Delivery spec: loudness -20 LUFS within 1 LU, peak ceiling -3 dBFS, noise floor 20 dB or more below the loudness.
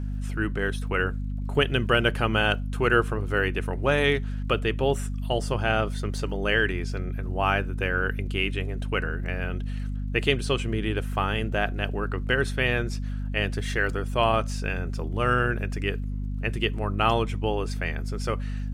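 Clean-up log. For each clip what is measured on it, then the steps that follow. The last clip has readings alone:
ticks 40/s; hum 50 Hz; harmonics up to 250 Hz; hum level -27 dBFS; loudness -26.5 LUFS; peak -6.5 dBFS; loudness target -20.0 LUFS
-> de-click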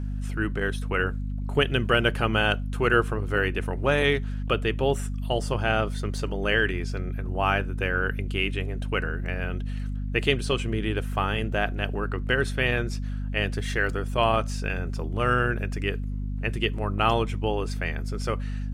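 ticks 0/s; hum 50 Hz; harmonics up to 250 Hz; hum level -27 dBFS
-> notches 50/100/150/200/250 Hz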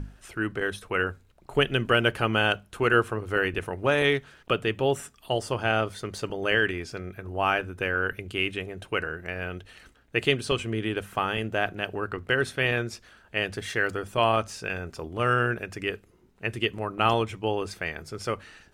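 hum none; loudness -27.5 LUFS; peak -7.0 dBFS; loudness target -20.0 LUFS
-> gain +7.5 dB; limiter -3 dBFS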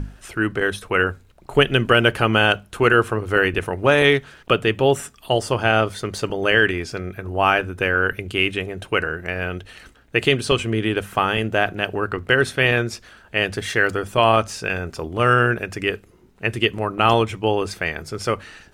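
loudness -20.0 LUFS; peak -3.0 dBFS; noise floor -51 dBFS

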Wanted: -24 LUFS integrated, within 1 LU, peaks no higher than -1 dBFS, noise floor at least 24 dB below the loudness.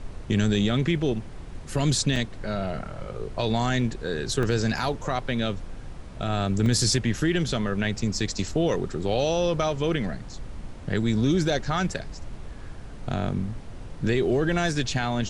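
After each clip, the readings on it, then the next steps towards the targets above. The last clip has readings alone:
dropouts 4; longest dropout 1.2 ms; noise floor -39 dBFS; noise floor target -50 dBFS; loudness -26.0 LUFS; peak -11.5 dBFS; loudness target -24.0 LUFS
-> interpolate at 2.16/4.43/6.66/7.99, 1.2 ms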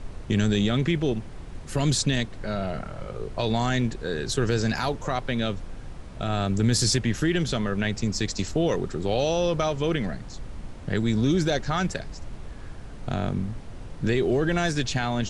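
dropouts 0; noise floor -39 dBFS; noise floor target -50 dBFS
-> noise print and reduce 11 dB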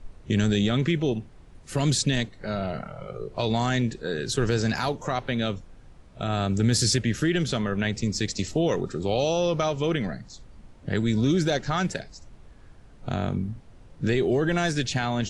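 noise floor -50 dBFS; loudness -26.0 LUFS; peak -11.5 dBFS; loudness target -24.0 LUFS
-> gain +2 dB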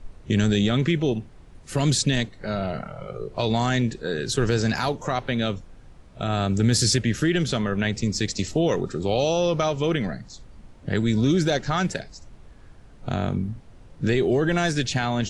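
loudness -24.0 LUFS; peak -9.5 dBFS; noise floor -48 dBFS

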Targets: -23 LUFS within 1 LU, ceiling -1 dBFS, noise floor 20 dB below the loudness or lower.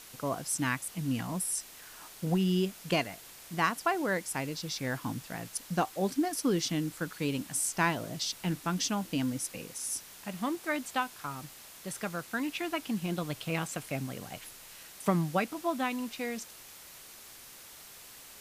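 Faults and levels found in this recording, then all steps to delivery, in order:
noise floor -51 dBFS; noise floor target -53 dBFS; loudness -33.0 LUFS; peak -13.0 dBFS; loudness target -23.0 LUFS
-> denoiser 6 dB, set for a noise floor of -51 dBFS; gain +10 dB

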